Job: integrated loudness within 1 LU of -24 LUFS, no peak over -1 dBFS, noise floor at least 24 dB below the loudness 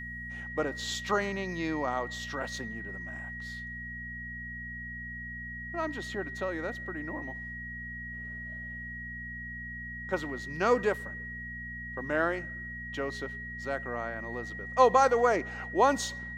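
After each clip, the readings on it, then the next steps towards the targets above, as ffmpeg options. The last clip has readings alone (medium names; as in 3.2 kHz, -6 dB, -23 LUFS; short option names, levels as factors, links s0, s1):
hum 60 Hz; highest harmonic 240 Hz; hum level -43 dBFS; steady tone 1.9 kHz; tone level -39 dBFS; loudness -32.5 LUFS; peak level -9.0 dBFS; loudness target -24.0 LUFS
-> -af "bandreject=f=60:t=h:w=4,bandreject=f=120:t=h:w=4,bandreject=f=180:t=h:w=4,bandreject=f=240:t=h:w=4"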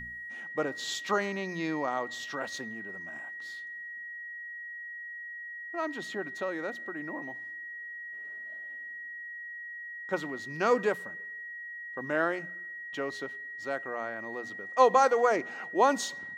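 hum not found; steady tone 1.9 kHz; tone level -39 dBFS
-> -af "bandreject=f=1900:w=30"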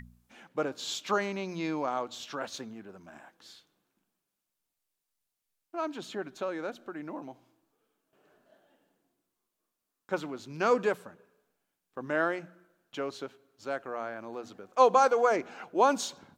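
steady tone not found; loudness -31.0 LUFS; peak level -9.5 dBFS; loudness target -24.0 LUFS
-> -af "volume=2.24"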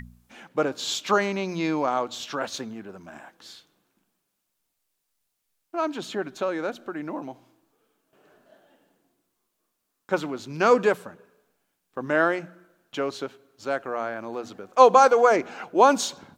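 loudness -24.0 LUFS; peak level -2.5 dBFS; noise floor -78 dBFS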